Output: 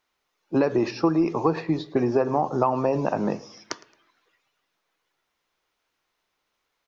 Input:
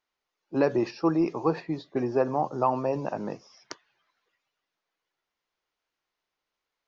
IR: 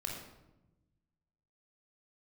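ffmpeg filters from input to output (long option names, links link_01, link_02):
-filter_complex "[0:a]asplit=2[link_01][link_02];[1:a]atrim=start_sample=2205,asetrate=83790,aresample=44100[link_03];[link_02][link_03]afir=irnorm=-1:irlink=0,volume=-12dB[link_04];[link_01][link_04]amix=inputs=2:normalize=0,acompressor=threshold=-25dB:ratio=6,bandreject=frequency=4700:width=23,asplit=2[link_05][link_06];[link_06]aecho=0:1:110|220:0.0794|0.0254[link_07];[link_05][link_07]amix=inputs=2:normalize=0,volume=7.5dB"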